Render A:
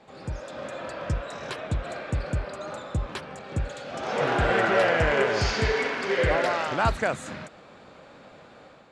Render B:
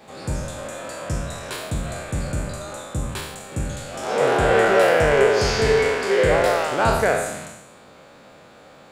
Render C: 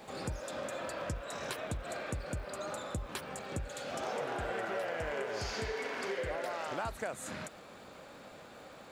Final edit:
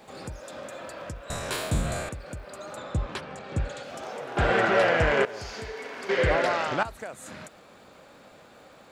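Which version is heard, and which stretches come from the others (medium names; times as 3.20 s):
C
1.30–2.09 s: from B
2.77–3.83 s: from A
4.37–5.25 s: from A
6.09–6.83 s: from A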